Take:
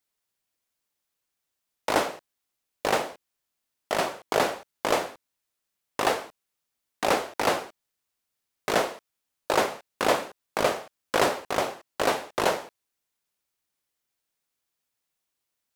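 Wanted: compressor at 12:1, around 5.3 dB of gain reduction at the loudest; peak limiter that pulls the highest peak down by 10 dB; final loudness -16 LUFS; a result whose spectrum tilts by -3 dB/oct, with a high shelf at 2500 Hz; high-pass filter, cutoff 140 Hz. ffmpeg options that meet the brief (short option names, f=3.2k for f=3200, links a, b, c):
-af "highpass=140,highshelf=f=2.5k:g=-4.5,acompressor=threshold=-23dB:ratio=12,volume=20dB,alimiter=limit=-1dB:level=0:latency=1"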